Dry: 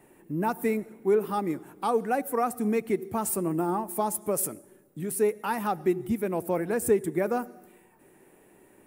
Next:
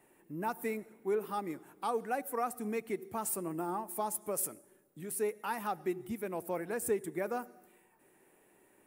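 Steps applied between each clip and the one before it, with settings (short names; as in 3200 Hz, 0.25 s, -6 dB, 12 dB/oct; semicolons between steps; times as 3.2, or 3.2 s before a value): low shelf 420 Hz -7.5 dB; gain -5.5 dB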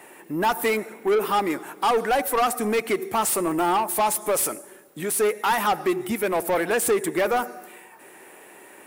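overdrive pedal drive 21 dB, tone 7100 Hz, clips at -20.5 dBFS; gain +7.5 dB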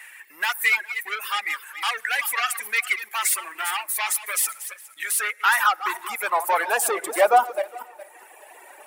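regenerating reverse delay 0.206 s, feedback 47%, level -7.5 dB; high-pass sweep 1900 Hz -> 670 Hz, 5–7.29; reverb removal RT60 1.7 s; gain +2 dB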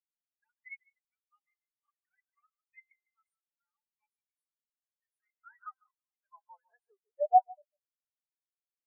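resonator 260 Hz, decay 1.1 s, mix 70%; on a send: echo 0.149 s -6.5 dB; on the sum: spectral expander 4:1; gain +2.5 dB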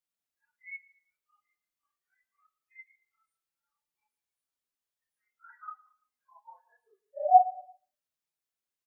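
phase scrambler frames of 0.1 s; feedback echo 0.113 s, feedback 38%, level -21 dB; gain +3.5 dB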